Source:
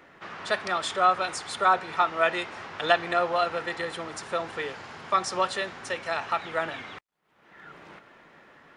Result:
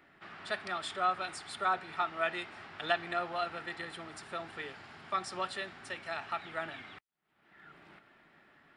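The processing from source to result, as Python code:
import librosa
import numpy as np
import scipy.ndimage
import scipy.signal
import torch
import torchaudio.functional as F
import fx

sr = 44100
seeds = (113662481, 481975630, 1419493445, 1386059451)

y = fx.graphic_eq_31(x, sr, hz=(500, 1000, 6300), db=(-10, -6, -9))
y = y * librosa.db_to_amplitude(-7.5)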